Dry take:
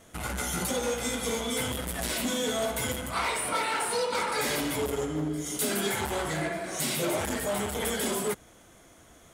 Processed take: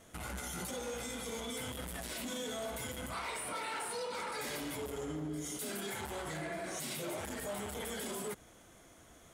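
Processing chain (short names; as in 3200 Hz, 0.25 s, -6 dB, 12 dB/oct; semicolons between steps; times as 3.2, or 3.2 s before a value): limiter -28 dBFS, peak gain reduction 10 dB; gain -4 dB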